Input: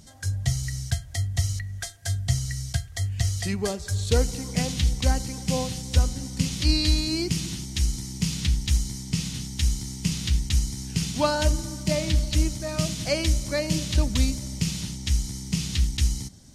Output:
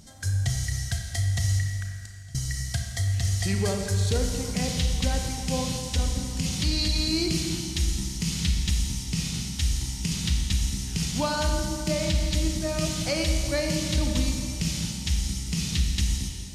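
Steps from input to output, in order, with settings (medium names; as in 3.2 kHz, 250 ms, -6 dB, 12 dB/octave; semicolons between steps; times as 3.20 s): 1.67–2.35 s: inverted gate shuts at -28 dBFS, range -25 dB; peak limiter -17 dBFS, peak gain reduction 8 dB; Schroeder reverb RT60 2.1 s, combs from 28 ms, DRR 2.5 dB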